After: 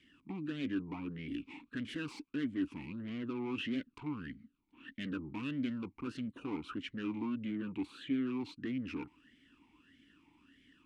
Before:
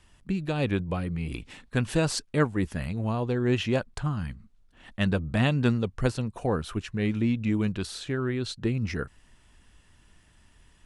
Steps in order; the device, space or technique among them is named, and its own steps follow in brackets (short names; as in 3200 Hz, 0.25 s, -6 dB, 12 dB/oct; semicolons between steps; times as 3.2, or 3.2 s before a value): talk box (tube stage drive 35 dB, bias 0.3; vowel sweep i-u 1.6 Hz); 7.35–8.27 bell 5300 Hz -11 dB 0.55 oct; gain +11.5 dB